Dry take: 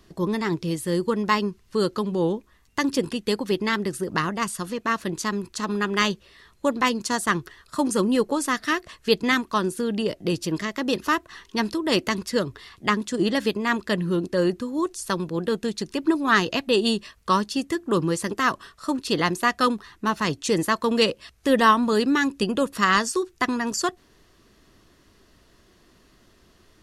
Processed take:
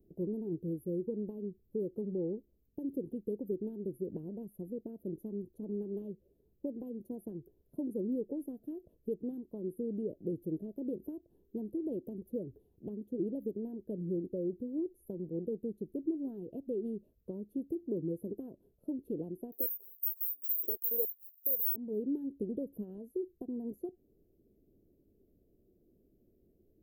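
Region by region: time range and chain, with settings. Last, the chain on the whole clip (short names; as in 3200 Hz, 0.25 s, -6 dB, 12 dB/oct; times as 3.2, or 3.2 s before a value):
19.52–21.76 careless resampling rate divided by 3×, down none, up zero stuff + stepped high-pass 7.2 Hz 400–3700 Hz
whole clip: low shelf 310 Hz -9 dB; compressor 3:1, threshold -27 dBFS; inverse Chebyshev band-stop 1100–8300 Hz, stop band 50 dB; gain -3.5 dB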